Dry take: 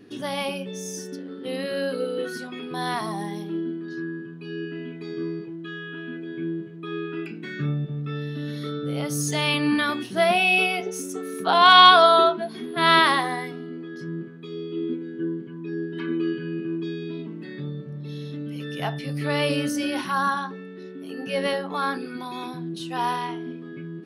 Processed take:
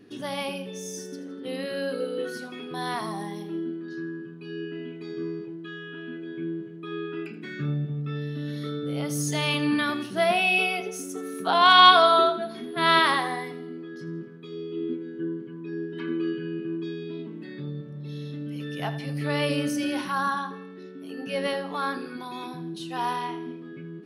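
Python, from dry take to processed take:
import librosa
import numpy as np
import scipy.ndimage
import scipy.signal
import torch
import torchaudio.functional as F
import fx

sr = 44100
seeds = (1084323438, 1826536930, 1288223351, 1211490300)

y = fx.echo_feedback(x, sr, ms=82, feedback_pct=47, wet_db=-14.5)
y = y * librosa.db_to_amplitude(-3.0)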